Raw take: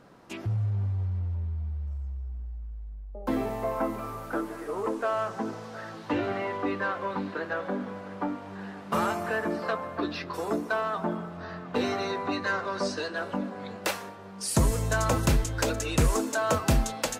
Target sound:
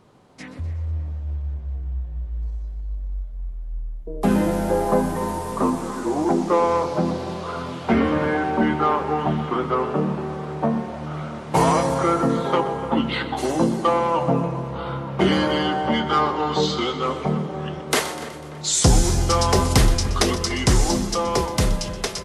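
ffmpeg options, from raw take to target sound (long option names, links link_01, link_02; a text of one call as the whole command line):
ffmpeg -i in.wav -filter_complex "[0:a]highshelf=frequency=5700:gain=5,asplit=2[link_01][link_02];[link_02]aecho=0:1:96|192|288|384|480|576:0.188|0.105|0.0591|0.0331|0.0185|0.0104[link_03];[link_01][link_03]amix=inputs=2:normalize=0,dynaudnorm=framelen=460:gausssize=9:maxgain=9.5dB,asetrate=34089,aresample=44100,asplit=2[link_04][link_05];[link_05]adelay=293,lowpass=frequency=2400:poles=1,volume=-14.5dB,asplit=2[link_06][link_07];[link_07]adelay=293,lowpass=frequency=2400:poles=1,volume=0.5,asplit=2[link_08][link_09];[link_09]adelay=293,lowpass=frequency=2400:poles=1,volume=0.5,asplit=2[link_10][link_11];[link_11]adelay=293,lowpass=frequency=2400:poles=1,volume=0.5,asplit=2[link_12][link_13];[link_13]adelay=293,lowpass=frequency=2400:poles=1,volume=0.5[link_14];[link_06][link_08][link_10][link_12][link_14]amix=inputs=5:normalize=0[link_15];[link_04][link_15]amix=inputs=2:normalize=0" out.wav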